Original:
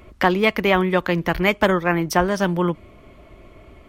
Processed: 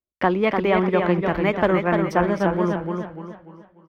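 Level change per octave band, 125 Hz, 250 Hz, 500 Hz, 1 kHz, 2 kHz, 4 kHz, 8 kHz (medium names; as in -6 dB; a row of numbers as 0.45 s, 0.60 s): -1.0 dB, 0.0 dB, +0.5 dB, -1.0 dB, -4.5 dB, -8.5 dB, under -10 dB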